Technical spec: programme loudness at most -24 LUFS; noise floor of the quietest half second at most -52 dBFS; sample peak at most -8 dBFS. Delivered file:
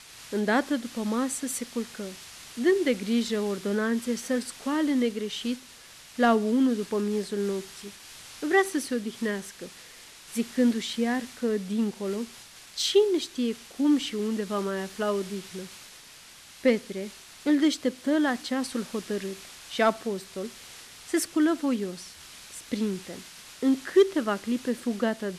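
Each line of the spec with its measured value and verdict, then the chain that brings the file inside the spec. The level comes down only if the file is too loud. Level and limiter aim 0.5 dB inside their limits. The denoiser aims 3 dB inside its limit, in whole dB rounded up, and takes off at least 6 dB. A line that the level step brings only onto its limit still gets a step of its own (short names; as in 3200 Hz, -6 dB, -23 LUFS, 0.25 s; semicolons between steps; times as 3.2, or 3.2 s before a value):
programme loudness -27.5 LUFS: OK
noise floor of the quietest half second -50 dBFS: fail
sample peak -11.0 dBFS: OK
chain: denoiser 6 dB, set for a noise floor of -50 dBFS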